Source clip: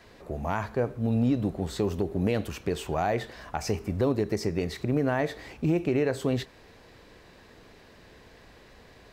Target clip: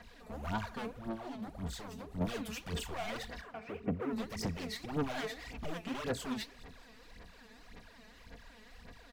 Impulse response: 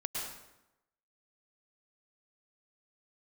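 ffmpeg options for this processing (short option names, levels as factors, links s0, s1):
-filter_complex "[0:a]equalizer=f=400:w=1.2:g=-8,alimiter=limit=0.075:level=0:latency=1:release=90,aecho=1:1:4.2:0.54,aeval=exprs='0.0316*(abs(mod(val(0)/0.0316+3,4)-2)-1)':c=same,asettb=1/sr,asplit=3[s0][s1][s2];[s0]atrim=end=0.904[s3];[s1]atrim=start=0.9:end=2.21,asetpts=PTS-STARTPTS,afade=t=in:d=0.004:c=qsin,afade=t=out:st=1.306:d=0.004:c=qsin,acompressor=threshold=0.0126:ratio=6[s4];[s2]atrim=start=2.206[s5];[s3][s4]acrossfade=d=0.004:c1=hsin:c2=qsin[s6];[s6][s5]acrossfade=d=0.004:c1=qsin:c2=hsin,asettb=1/sr,asplit=3[s7][s8][s9];[s7]atrim=end=3.414[s10];[s8]atrim=start=3.41:end=4.13,asetpts=PTS-STARTPTS,afade=t=in:d=0.004:c=qsin,afade=t=out:st=0.716:d=0.004:c=qsin,highpass=130,equalizer=f=430:t=q:w=4:g=9,equalizer=f=860:t=q:w=4:g=-6,equalizer=f=1700:t=q:w=4:g=-4,lowpass=f=2300:w=0.5412,lowpass=f=2300:w=1.3066[s11];[s9]atrim=start=4.126[s12];[s10][s11]acrossfade=d=0.004:c1=hsin:c2=qsin[s13];[s13][s12]acrossfade=d=0.004:c1=qsin:c2=hsin,aecho=1:1:210|420|630|840:0.075|0.042|0.0235|0.0132,aphaser=in_gain=1:out_gain=1:delay=4.7:decay=0.72:speed=1.8:type=sinusoidal,volume=0.473"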